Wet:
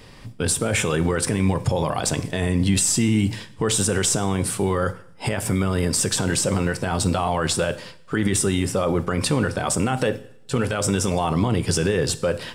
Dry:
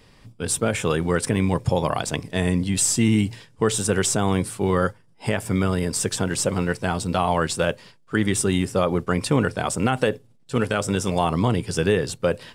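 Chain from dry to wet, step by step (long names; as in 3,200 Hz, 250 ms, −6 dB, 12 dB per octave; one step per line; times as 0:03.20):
brickwall limiter −19 dBFS, peak gain reduction 11 dB
coupled-rooms reverb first 0.63 s, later 1.6 s, from −24 dB, DRR 12.5 dB
level +7.5 dB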